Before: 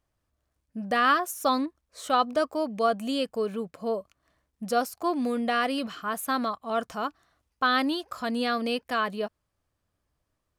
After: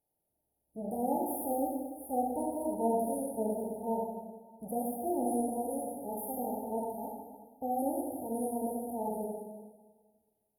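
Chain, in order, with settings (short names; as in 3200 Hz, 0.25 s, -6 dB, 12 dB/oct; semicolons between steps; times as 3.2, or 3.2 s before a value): spectral limiter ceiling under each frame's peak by 20 dB; bell 12000 Hz +6.5 dB 2.8 oct; harmonic-percussive split percussive -10 dB; brick-wall FIR band-stop 930–9400 Hz; reverb RT60 1.5 s, pre-delay 18 ms, DRR -2 dB; gain -5 dB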